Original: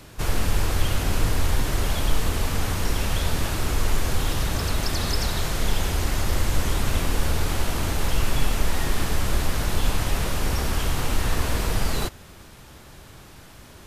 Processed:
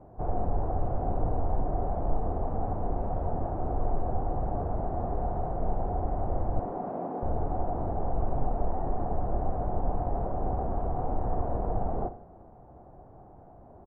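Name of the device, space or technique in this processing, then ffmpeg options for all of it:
under water: -filter_complex "[0:a]asettb=1/sr,asplit=3[link_01][link_02][link_03];[link_01]atrim=end=6.594[link_04];[link_02]atrim=start=6.59:end=7.23,asetpts=PTS-STARTPTS,afade=type=in:duration=0.004:curve=qsin,afade=type=out:start_time=0.636:duration=0.004:curve=qsin,highpass=frequency=180:width=0.5412,highpass=frequency=180:width=1.3066[link_05];[link_03]atrim=start=7.226[link_06];[link_04][link_05]acrossfade=duration=0.004:curve1=hsin:curve2=qsin[link_07];[link_07][link_06]acrossfade=duration=0.004:curve1=qsin:curve2=hsin,lowpass=frequency=770:width=0.5412,lowpass=frequency=770:width=1.3066,lowshelf=frequency=490:gain=-9,equalizer=frequency=730:width_type=o:width=0.23:gain=11,aecho=1:1:62|124|186|248|310:0.2|0.0978|0.0479|0.0235|0.0115,volume=2dB"

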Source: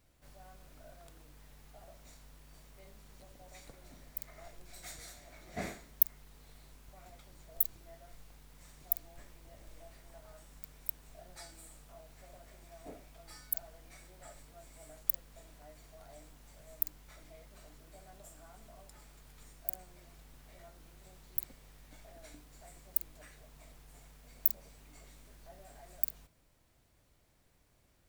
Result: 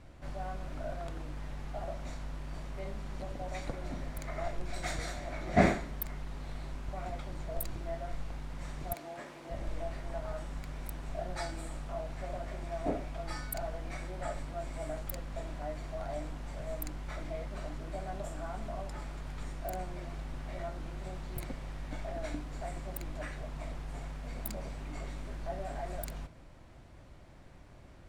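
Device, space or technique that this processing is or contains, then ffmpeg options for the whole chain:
through cloth: -filter_complex "[0:a]lowpass=9100,highshelf=frequency=3200:gain=-15,bandreject=frequency=450:width=12,asettb=1/sr,asplit=3[link_01][link_02][link_03];[link_01]atrim=end=8.934[link_04];[link_02]atrim=start=8.93:end=9.5,asetpts=PTS-STARTPTS,afade=type=in:duration=0.004:curve=qsin,afade=type=out:start_time=0.566:duration=0.004:curve=qsin,highpass=260[link_05];[link_03]atrim=start=9.496[link_06];[link_04][link_05]acrossfade=duration=0.004:curve1=hsin:curve2=qsin[link_07];[link_07][link_06]acrossfade=duration=0.004:curve1=qsin:curve2=hsin,volume=17dB"

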